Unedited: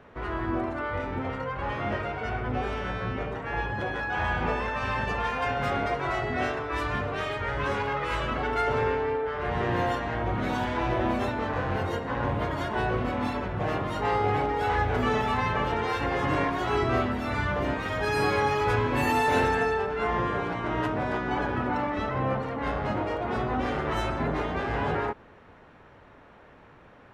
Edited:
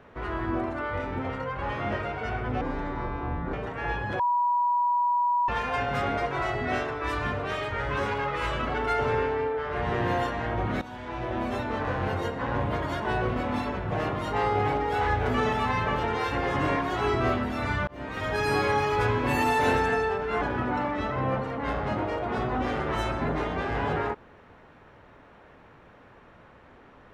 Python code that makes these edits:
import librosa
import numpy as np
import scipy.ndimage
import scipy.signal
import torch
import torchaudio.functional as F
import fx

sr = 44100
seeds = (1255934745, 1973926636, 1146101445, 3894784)

y = fx.edit(x, sr, fx.speed_span(start_s=2.61, length_s=0.61, speed=0.66),
    fx.bleep(start_s=3.88, length_s=1.29, hz=970.0, db=-21.0),
    fx.fade_in_from(start_s=10.5, length_s=0.98, floor_db=-15.5),
    fx.fade_in_span(start_s=17.56, length_s=0.38),
    fx.cut(start_s=20.1, length_s=1.3), tone=tone)